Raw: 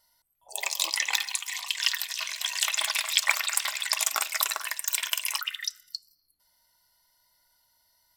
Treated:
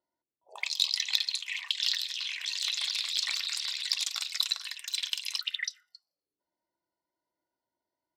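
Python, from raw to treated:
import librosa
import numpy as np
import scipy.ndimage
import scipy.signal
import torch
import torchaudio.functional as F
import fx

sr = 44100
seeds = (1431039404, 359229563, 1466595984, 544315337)

y = fx.auto_wah(x, sr, base_hz=340.0, top_hz=4100.0, q=4.3, full_db=-28.0, direction='up')
y = fx.cheby_harmonics(y, sr, harmonics=(5,), levels_db=(-20,), full_scale_db=-9.0)
y = fx.transient(y, sr, attack_db=-11, sustain_db=4, at=(1.86, 3.91))
y = y * 10.0 ** (3.0 / 20.0)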